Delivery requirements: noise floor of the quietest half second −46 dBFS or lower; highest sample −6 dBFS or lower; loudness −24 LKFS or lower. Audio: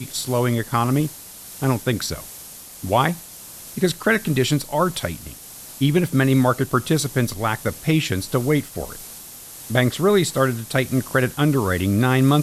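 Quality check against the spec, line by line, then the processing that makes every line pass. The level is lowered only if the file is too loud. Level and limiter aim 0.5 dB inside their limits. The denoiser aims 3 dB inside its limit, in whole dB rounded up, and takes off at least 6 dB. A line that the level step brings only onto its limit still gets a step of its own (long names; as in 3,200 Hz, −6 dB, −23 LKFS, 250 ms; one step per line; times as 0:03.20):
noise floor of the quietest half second −40 dBFS: out of spec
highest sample −5.0 dBFS: out of spec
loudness −21.0 LKFS: out of spec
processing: broadband denoise 6 dB, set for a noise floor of −40 dBFS
level −3.5 dB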